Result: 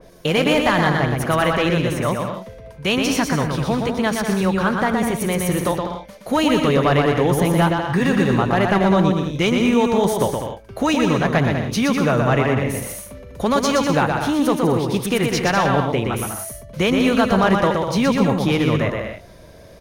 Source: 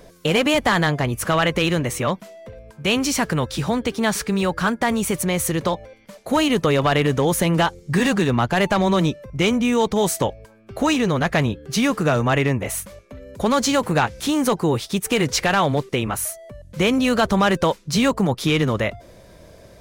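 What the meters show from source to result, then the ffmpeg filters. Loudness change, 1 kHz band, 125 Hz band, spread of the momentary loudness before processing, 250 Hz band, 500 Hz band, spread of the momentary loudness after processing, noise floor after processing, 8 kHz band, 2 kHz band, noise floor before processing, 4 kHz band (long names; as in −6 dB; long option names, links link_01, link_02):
+1.5 dB, +2.0 dB, +2.0 dB, 6 LU, +2.5 dB, +2.0 dB, 9 LU, −43 dBFS, −3.0 dB, +1.0 dB, −48 dBFS, −1.0 dB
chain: -filter_complex "[0:a]bandreject=frequency=7600:width=6,asplit=2[link_01][link_02];[link_02]aecho=0:1:120|198|248.7|281.7|303.1:0.631|0.398|0.251|0.158|0.1[link_03];[link_01][link_03]amix=inputs=2:normalize=0,adynamicequalizer=threshold=0.0224:dfrequency=2400:dqfactor=0.7:tfrequency=2400:tqfactor=0.7:attack=5:release=100:ratio=0.375:range=3.5:mode=cutabove:tftype=highshelf"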